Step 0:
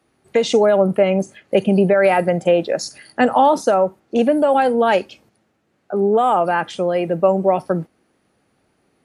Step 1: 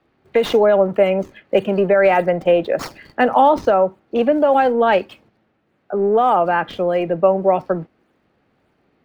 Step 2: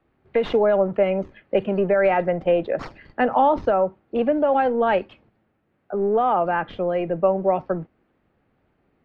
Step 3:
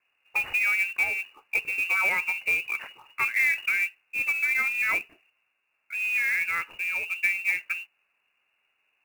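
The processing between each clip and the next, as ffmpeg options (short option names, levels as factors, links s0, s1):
-filter_complex "[0:a]acrossover=split=270|4300[s0][s1][s2];[s0]asoftclip=type=tanh:threshold=0.0355[s3];[s2]acrusher=samples=36:mix=1:aa=0.000001:lfo=1:lforange=57.6:lforate=1.7[s4];[s3][s1][s4]amix=inputs=3:normalize=0,volume=1.12"
-af "lowpass=3000,lowshelf=f=79:g=11,volume=0.562"
-af "lowpass=f=2500:t=q:w=0.5098,lowpass=f=2500:t=q:w=0.6013,lowpass=f=2500:t=q:w=0.9,lowpass=f=2500:t=q:w=2.563,afreqshift=-2900,highshelf=f=2300:g=-9.5,acrusher=bits=4:mode=log:mix=0:aa=0.000001,volume=0.794"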